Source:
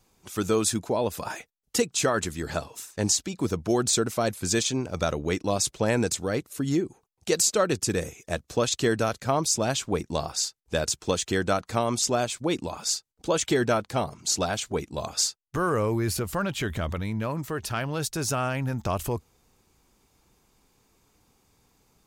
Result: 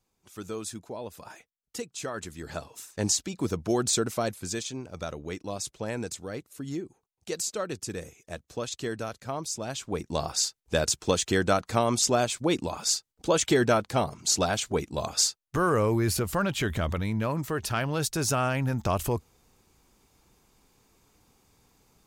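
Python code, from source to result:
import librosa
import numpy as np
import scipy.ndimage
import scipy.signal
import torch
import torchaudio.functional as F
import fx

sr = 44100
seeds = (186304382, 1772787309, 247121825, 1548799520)

y = fx.gain(x, sr, db=fx.line((1.95, -12.0), (3.01, -2.0), (4.17, -2.0), (4.6, -9.0), (9.66, -9.0), (10.3, 1.0)))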